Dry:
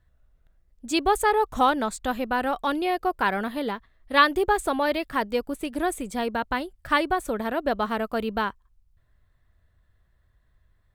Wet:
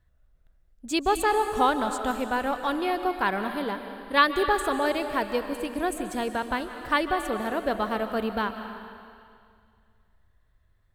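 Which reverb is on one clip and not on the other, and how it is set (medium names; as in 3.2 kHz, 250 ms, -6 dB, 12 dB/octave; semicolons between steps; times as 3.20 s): algorithmic reverb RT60 2.2 s, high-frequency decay 1×, pre-delay 105 ms, DRR 7.5 dB; trim -2 dB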